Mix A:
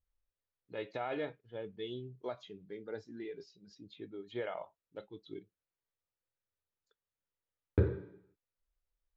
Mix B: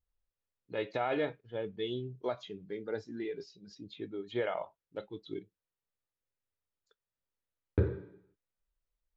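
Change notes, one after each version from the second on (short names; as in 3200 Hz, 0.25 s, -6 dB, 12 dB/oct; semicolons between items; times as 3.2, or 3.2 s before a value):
first voice +5.5 dB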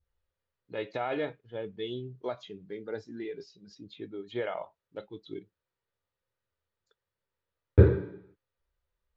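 second voice: send +11.5 dB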